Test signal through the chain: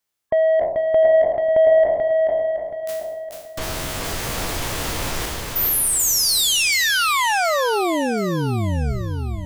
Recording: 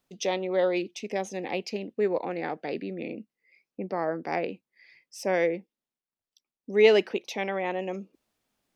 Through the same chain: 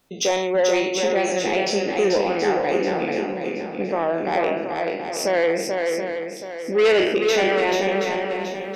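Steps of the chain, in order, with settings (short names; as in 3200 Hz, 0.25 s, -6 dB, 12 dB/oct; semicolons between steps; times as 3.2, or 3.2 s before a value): spectral trails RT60 0.64 s; in parallel at -2.5 dB: compressor, threshold -34 dBFS; on the sum: dynamic EQ 200 Hz, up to -4 dB, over -42 dBFS, Q 1.2; spectral gate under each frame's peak -30 dB strong; soft clip -18.5 dBFS; swung echo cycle 0.726 s, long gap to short 1.5:1, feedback 35%, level -4 dB; gain +6 dB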